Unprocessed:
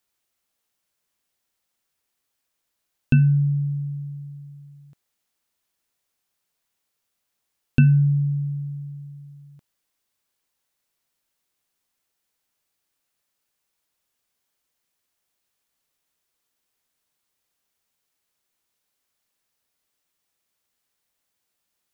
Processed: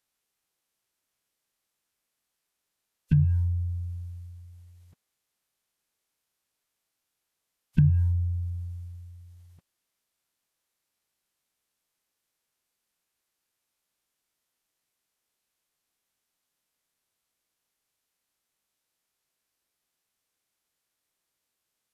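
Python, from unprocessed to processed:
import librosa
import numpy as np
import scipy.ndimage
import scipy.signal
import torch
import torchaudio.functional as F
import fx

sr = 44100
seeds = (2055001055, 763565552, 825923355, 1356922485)

y = fx.pitch_keep_formants(x, sr, semitones=-8.5)
y = y * librosa.db_to_amplitude(-3.0)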